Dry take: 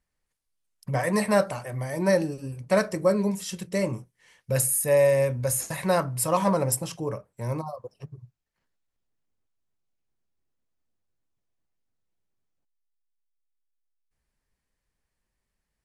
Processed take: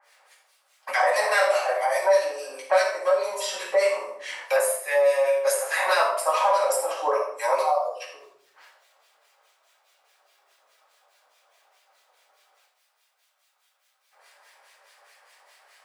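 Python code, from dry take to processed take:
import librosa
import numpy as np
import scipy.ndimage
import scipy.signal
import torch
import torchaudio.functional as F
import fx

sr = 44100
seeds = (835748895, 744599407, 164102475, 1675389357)

p1 = fx.high_shelf(x, sr, hz=6500.0, db=-10.0)
p2 = np.clip(10.0 ** (24.0 / 20.0) * p1, -1.0, 1.0) / 10.0 ** (24.0 / 20.0)
p3 = p1 + (p2 * librosa.db_to_amplitude(-9.0))
p4 = fx.harmonic_tremolo(p3, sr, hz=4.8, depth_pct=100, crossover_hz=1500.0)
p5 = fx.room_shoebox(p4, sr, seeds[0], volume_m3=550.0, walls='furnished', distance_m=8.3)
p6 = fx.rider(p5, sr, range_db=10, speed_s=0.5)
p7 = scipy.signal.sosfilt(scipy.signal.butter(6, 580.0, 'highpass', fs=sr, output='sos'), p6)
p8 = p7 + fx.echo_single(p7, sr, ms=82, db=-14.0, dry=0)
y = fx.band_squash(p8, sr, depth_pct=70)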